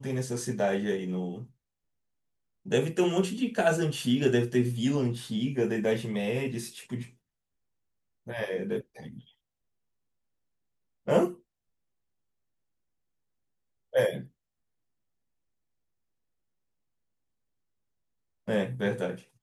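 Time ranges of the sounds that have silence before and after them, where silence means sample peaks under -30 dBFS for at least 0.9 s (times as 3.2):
2.72–7.02
8.3–8.79
11.08–11.28
13.95–14.17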